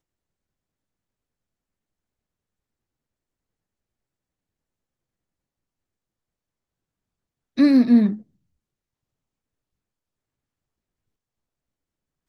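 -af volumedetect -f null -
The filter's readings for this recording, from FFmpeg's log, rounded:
mean_volume: -28.1 dB
max_volume: -6.5 dB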